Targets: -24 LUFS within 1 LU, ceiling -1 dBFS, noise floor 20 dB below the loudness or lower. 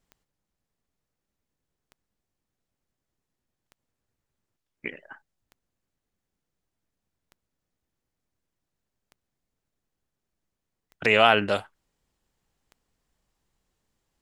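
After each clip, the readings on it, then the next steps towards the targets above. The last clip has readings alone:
clicks found 8; loudness -21.5 LUFS; peak level -3.5 dBFS; loudness target -24.0 LUFS
-> de-click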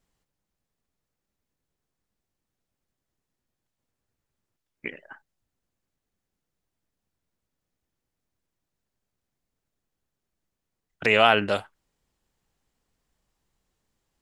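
clicks found 0; loudness -21.5 LUFS; peak level -3.5 dBFS; loudness target -24.0 LUFS
-> trim -2.5 dB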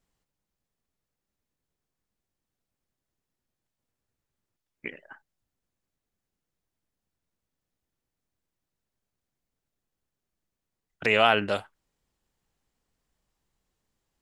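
loudness -24.0 LUFS; peak level -6.0 dBFS; noise floor -87 dBFS

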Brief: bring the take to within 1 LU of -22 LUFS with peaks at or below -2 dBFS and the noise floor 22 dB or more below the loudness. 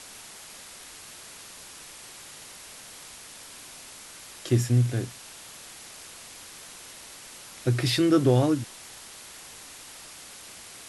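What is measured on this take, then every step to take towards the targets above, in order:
noise floor -46 dBFS; noise floor target -47 dBFS; loudness -24.5 LUFS; peak level -9.5 dBFS; loudness target -22.0 LUFS
-> noise reduction 6 dB, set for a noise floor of -46 dBFS; trim +2.5 dB

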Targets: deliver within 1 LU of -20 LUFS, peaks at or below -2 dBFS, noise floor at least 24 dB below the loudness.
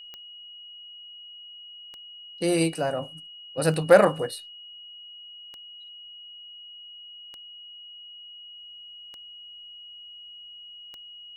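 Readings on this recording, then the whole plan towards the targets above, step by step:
clicks found 7; steady tone 2.9 kHz; tone level -42 dBFS; loudness -23.5 LUFS; peak level -3.5 dBFS; loudness target -20.0 LUFS
-> de-click; band-stop 2.9 kHz, Q 30; trim +3.5 dB; peak limiter -2 dBFS

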